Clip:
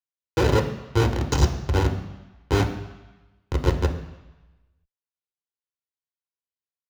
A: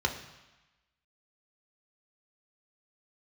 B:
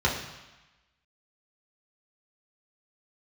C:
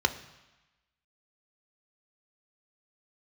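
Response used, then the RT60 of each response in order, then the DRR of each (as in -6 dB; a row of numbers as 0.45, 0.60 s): A; 1.1, 1.1, 1.1 s; 3.0, -4.5, 8.5 dB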